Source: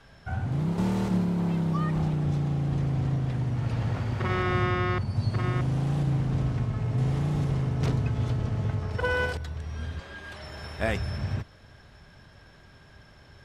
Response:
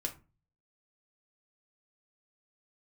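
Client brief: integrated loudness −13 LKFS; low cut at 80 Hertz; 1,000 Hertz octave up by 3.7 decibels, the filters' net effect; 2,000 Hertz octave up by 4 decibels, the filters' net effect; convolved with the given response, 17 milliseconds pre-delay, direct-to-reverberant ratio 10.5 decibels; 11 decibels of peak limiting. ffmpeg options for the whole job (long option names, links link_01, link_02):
-filter_complex "[0:a]highpass=80,equalizer=frequency=1000:width_type=o:gain=3.5,equalizer=frequency=2000:width_type=o:gain=4,alimiter=limit=-20.5dB:level=0:latency=1,asplit=2[link_01][link_02];[1:a]atrim=start_sample=2205,adelay=17[link_03];[link_02][link_03]afir=irnorm=-1:irlink=0,volume=-11.5dB[link_04];[link_01][link_04]amix=inputs=2:normalize=0,volume=16dB"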